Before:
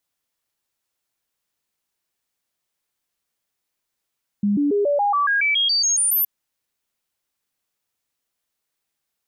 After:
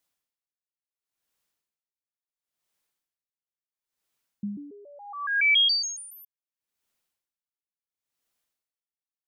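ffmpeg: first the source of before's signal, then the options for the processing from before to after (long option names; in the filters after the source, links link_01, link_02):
-f lavfi -i "aevalsrc='0.158*clip(min(mod(t,0.14),0.14-mod(t,0.14))/0.005,0,1)*sin(2*PI*204*pow(2,floor(t/0.14)/2)*mod(t,0.14))':duration=1.82:sample_rate=44100"
-af "bandreject=frequency=50:width_type=h:width=6,bandreject=frequency=100:width_type=h:width=6,bandreject=frequency=150:width_type=h:width=6,aeval=exprs='val(0)*pow(10,-29*(0.5-0.5*cos(2*PI*0.72*n/s))/20)':channel_layout=same"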